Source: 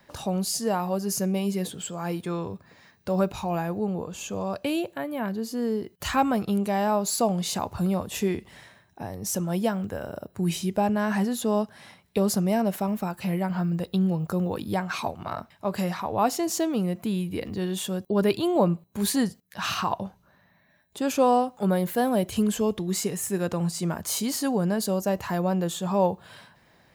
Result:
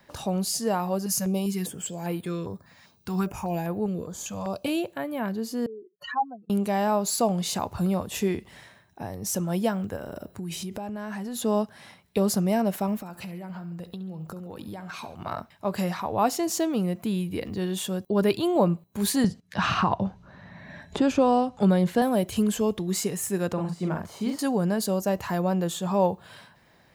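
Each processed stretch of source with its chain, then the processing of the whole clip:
1.06–4.68 s: treble shelf 5.1 kHz +4 dB + step-sequenced notch 5 Hz 390–5800 Hz
5.66–6.50 s: spectral contrast enhancement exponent 3.2 + high-pass 740 Hz
9.96–11.36 s: transient shaper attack +1 dB, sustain +6 dB + compression, threshold -31 dBFS
12.99–15.15 s: compression 10:1, threshold -34 dBFS + feedback delay 69 ms, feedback 46%, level -15.5 dB
19.24–22.02 s: low-pass 6.1 kHz + bass shelf 210 Hz +9.5 dB + three bands compressed up and down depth 70%
23.53–24.39 s: de-esser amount 90% + treble shelf 4.7 kHz -12 dB + doubling 44 ms -4 dB
whole clip: none

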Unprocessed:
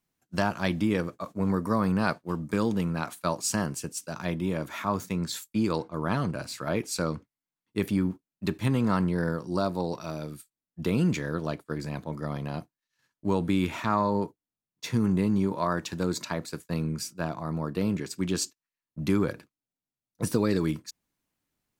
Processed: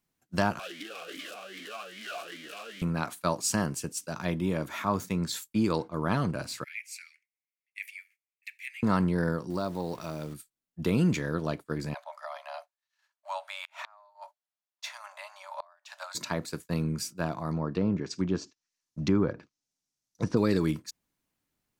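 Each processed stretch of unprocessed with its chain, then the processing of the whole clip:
0.59–2.82 s: one-bit comparator + tilt EQ +4.5 dB/octave + talking filter a-i 2.5 Hz
6.64–8.83 s: steep high-pass 2.1 kHz 48 dB/octave + resonant high shelf 2.8 kHz -8 dB, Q 3
9.50–10.34 s: send-on-delta sampling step -47.5 dBFS + compression 1.5:1, threshold -33 dBFS
11.94–16.15 s: Chebyshev high-pass 570 Hz, order 10 + treble shelf 7.9 kHz -8 dB + inverted gate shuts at -24 dBFS, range -30 dB
17.51–20.37 s: low-pass that closes with the level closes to 1.3 kHz, closed at -25.5 dBFS + peaking EQ 5.9 kHz +15 dB 1 oct
whole clip: none

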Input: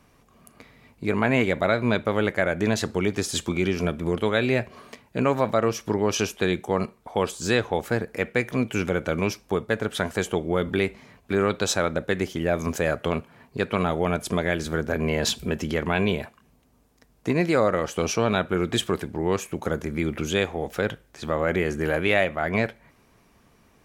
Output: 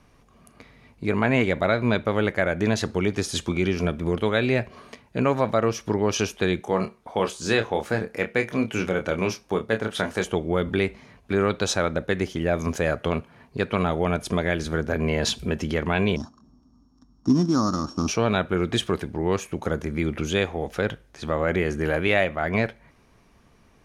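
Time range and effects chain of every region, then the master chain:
6.61–10.24 s: bass shelf 100 Hz -10 dB + doubling 27 ms -7 dB
16.16–18.08 s: sorted samples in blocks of 8 samples + FFT filter 140 Hz 0 dB, 280 Hz +9 dB, 480 Hz -17 dB, 810 Hz -4 dB, 1.2 kHz +3 dB, 2.1 kHz -24 dB, 6.7 kHz 0 dB, 12 kHz -25 dB + feedback echo behind a band-pass 65 ms, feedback 79%, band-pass 490 Hz, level -24 dB
whole clip: low-pass 10 kHz 12 dB/octave; bass shelf 72 Hz +6.5 dB; band-stop 7.6 kHz, Q 8.8

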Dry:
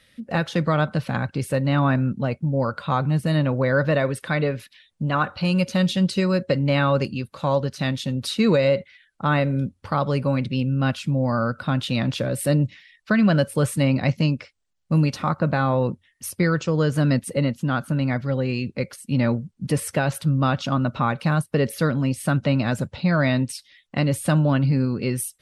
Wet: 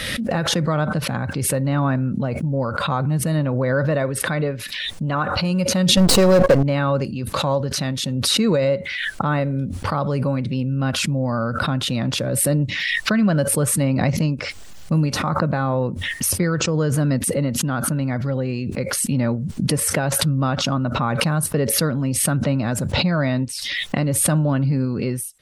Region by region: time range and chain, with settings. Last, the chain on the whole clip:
5.97–6.63 s: partial rectifier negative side -12 dB + peaking EQ 510 Hz +7 dB 0.76 oct + waveshaping leveller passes 3
whole clip: dynamic bell 3.1 kHz, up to -6 dB, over -41 dBFS, Q 0.87; swell ahead of each attack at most 24 dB/s

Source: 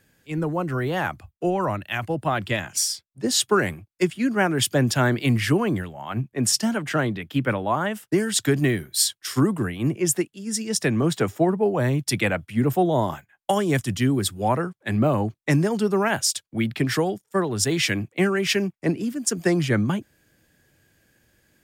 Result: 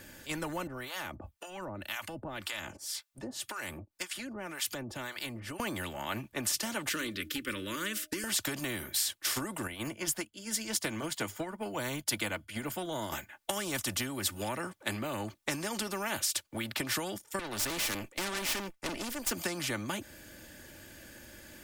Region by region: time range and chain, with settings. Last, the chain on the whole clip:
0.67–5.60 s: compression 4:1, threshold -33 dBFS + harmonic tremolo 1.9 Hz, depth 100%, crossover 790 Hz
6.89–8.24 s: Butterworth band-stop 760 Hz, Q 0.95 + static phaser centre 320 Hz, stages 4 + de-hum 307.5 Hz, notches 2
9.67–13.12 s: rippled EQ curve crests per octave 1.8, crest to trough 6 dB + upward expansion, over -41 dBFS
17.39–19.31 s: high-pass 200 Hz 6 dB/octave + valve stage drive 30 dB, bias 0.8
whole clip: comb 3.4 ms, depth 57%; compression, threshold -26 dBFS; spectrum-flattening compressor 2:1

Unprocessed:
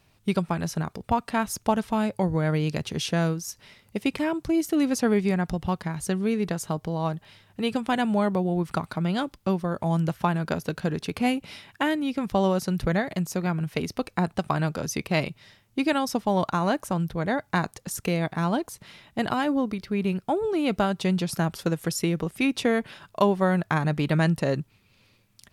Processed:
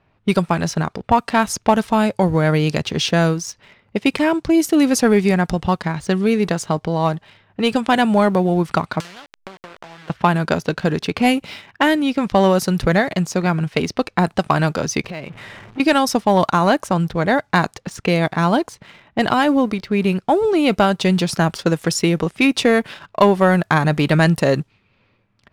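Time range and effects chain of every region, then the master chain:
9.00–10.10 s: send-on-delta sampling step -25.5 dBFS + tilt EQ +4 dB/octave + compression 3:1, threshold -42 dBFS
15.04–15.80 s: jump at every zero crossing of -37.5 dBFS + compression, threshold -34 dBFS + transformer saturation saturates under 530 Hz
whole clip: level-controlled noise filter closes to 1.8 kHz, open at -20.5 dBFS; bass shelf 260 Hz -5 dB; waveshaping leveller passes 1; trim +7 dB

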